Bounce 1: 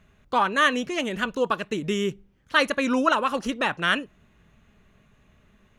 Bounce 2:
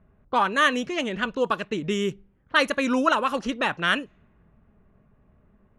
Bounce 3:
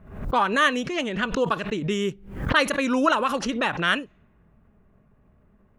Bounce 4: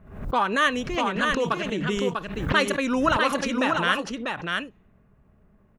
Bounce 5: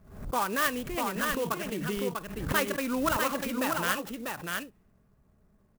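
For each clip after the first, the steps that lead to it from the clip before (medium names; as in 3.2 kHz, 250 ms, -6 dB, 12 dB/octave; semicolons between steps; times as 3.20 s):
level-controlled noise filter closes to 1 kHz, open at -20 dBFS
swell ahead of each attack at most 87 dB/s
delay 645 ms -4 dB; trim -1.5 dB
sampling jitter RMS 0.047 ms; trim -6 dB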